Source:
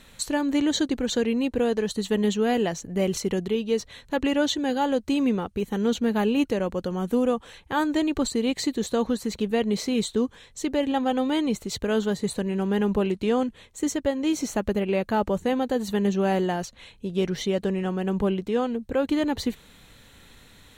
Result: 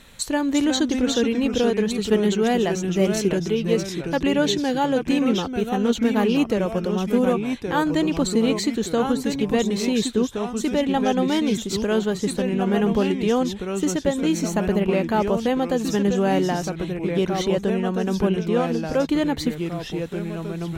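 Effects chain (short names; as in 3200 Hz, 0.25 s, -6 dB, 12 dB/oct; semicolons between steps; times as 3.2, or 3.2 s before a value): echoes that change speed 0.325 s, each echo -2 st, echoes 2, each echo -6 dB; gain +2.5 dB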